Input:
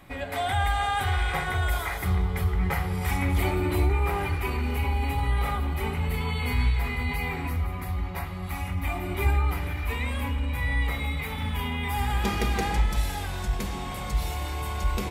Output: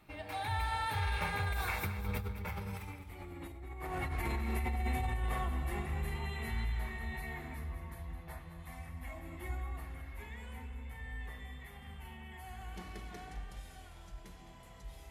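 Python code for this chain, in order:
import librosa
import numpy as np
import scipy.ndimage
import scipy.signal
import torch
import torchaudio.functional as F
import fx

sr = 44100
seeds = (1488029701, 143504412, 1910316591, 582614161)

p1 = fx.doppler_pass(x, sr, speed_mps=33, closest_m=12.0, pass_at_s=3.1)
p2 = fx.over_compress(p1, sr, threshold_db=-40.0, ratio=-1.0)
p3 = p2 + fx.echo_feedback(p2, sr, ms=212, feedback_pct=40, wet_db=-12, dry=0)
y = F.gain(torch.from_numpy(p3), 2.0).numpy()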